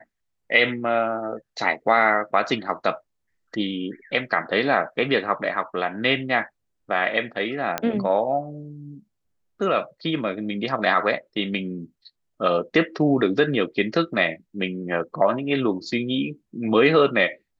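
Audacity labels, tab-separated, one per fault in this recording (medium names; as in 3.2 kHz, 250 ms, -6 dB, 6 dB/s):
7.780000	7.780000	pop -8 dBFS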